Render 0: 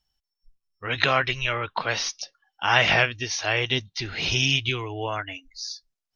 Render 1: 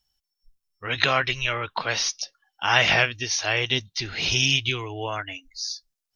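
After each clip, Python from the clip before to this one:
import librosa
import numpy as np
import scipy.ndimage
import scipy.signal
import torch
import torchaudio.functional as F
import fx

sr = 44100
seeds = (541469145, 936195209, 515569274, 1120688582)

y = fx.high_shelf(x, sr, hz=4700.0, db=8.0)
y = y * librosa.db_to_amplitude(-1.0)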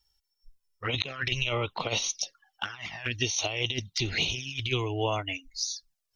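y = fx.over_compress(x, sr, threshold_db=-27.0, ratio=-0.5)
y = fx.env_flanger(y, sr, rest_ms=2.2, full_db=-24.0)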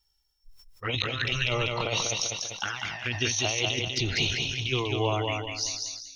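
y = fx.echo_feedback(x, sr, ms=195, feedback_pct=35, wet_db=-4)
y = fx.sustainer(y, sr, db_per_s=53.0)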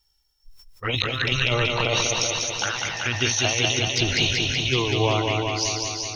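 y = fx.echo_feedback(x, sr, ms=378, feedback_pct=48, wet_db=-6.0)
y = y * librosa.db_to_amplitude(4.5)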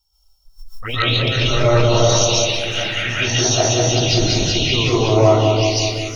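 y = fx.env_phaser(x, sr, low_hz=320.0, high_hz=3100.0, full_db=-17.5)
y = fx.rev_freeverb(y, sr, rt60_s=0.54, hf_ratio=0.3, predelay_ms=100, drr_db=-8.5)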